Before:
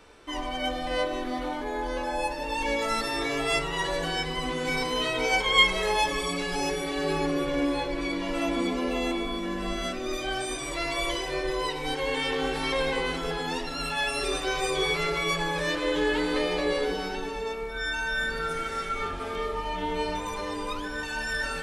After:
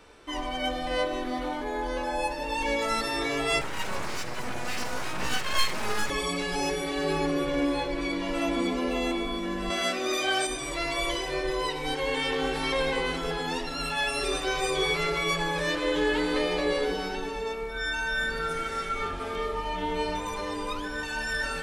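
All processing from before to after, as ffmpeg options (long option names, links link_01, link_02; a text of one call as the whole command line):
ffmpeg -i in.wav -filter_complex "[0:a]asettb=1/sr,asplit=3[link_01][link_02][link_03];[link_01]atrim=end=3.614[link_04];[link_02]atrim=start=3.61:end=6.1,asetpts=PTS-STARTPTS,afade=type=in:duration=0.004:curve=qsin,afade=type=out:start_time=2.486:duration=0.004:curve=qsin,asuperstop=centerf=3100:order=12:qfactor=1.6,afreqshift=-22,aeval=exprs='abs(val(0))':channel_layout=same[link_05];[link_03]atrim=start=6.096[link_06];[link_04][link_05]acrossfade=duration=0.004:curve1=hsin:curve2=qsin[link_07];[link_07][link_06]acrossfade=duration=0.004:curve1=qsin:curve2=hsin,asettb=1/sr,asplit=3[link_08][link_09][link_10];[link_08]atrim=end=9.704[link_11];[link_09]atrim=start=9.7:end=10.47,asetpts=PTS-STARTPTS,afade=type=in:duration=0.004:curve=qsin,afade=type=out:start_time=0.766:duration=0.004:curve=qsin,highpass=frequency=590:poles=1,acontrast=58,asplit=2[link_12][link_13];[link_13]adelay=16,volume=-12.5dB[link_14];[link_12][link_14]amix=inputs=2:normalize=0,atrim=end_sample=33957[link_15];[link_10]atrim=start=10.466[link_16];[link_11][link_15]acrossfade=duration=0.004:curve1=hsin:curve2=qsin[link_17];[link_17][link_16]acrossfade=duration=0.004:curve1=qsin:curve2=hsin" out.wav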